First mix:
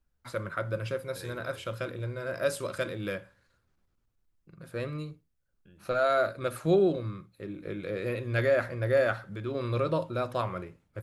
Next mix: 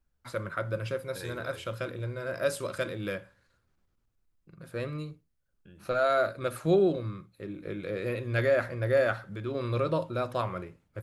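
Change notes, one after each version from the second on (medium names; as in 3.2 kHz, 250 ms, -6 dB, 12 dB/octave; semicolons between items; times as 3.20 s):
second voice +4.0 dB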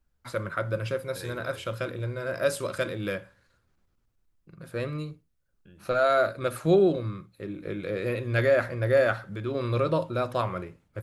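first voice +3.0 dB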